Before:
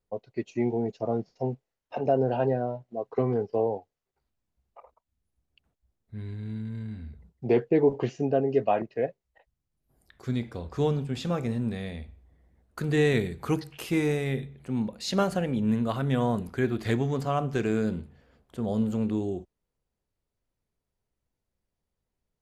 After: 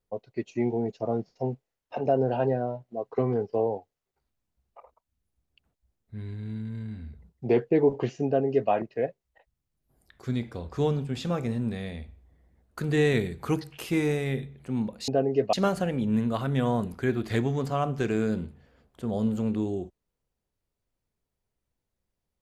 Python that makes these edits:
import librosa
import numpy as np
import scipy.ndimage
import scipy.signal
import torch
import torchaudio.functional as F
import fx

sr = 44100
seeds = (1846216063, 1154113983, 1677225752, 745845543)

y = fx.edit(x, sr, fx.duplicate(start_s=8.26, length_s=0.45, to_s=15.08), tone=tone)